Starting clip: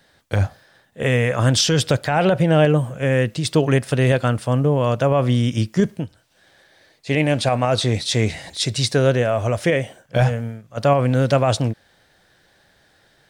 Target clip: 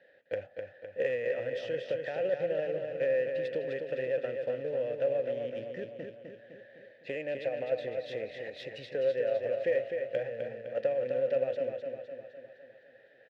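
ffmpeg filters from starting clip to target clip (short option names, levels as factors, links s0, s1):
-filter_complex "[0:a]acompressor=threshold=0.0398:ratio=10,acrusher=bits=4:mode=log:mix=0:aa=0.000001,asplit=3[s0][s1][s2];[s0]bandpass=f=530:t=q:w=8,volume=1[s3];[s1]bandpass=f=1840:t=q:w=8,volume=0.501[s4];[s2]bandpass=f=2480:t=q:w=8,volume=0.355[s5];[s3][s4][s5]amix=inputs=3:normalize=0,aecho=1:1:255|510|765|1020|1275|1530|1785:0.531|0.292|0.161|0.0883|0.0486|0.0267|0.0147,adynamicsmooth=sensitivity=4.5:basefreq=3400,volume=2.37"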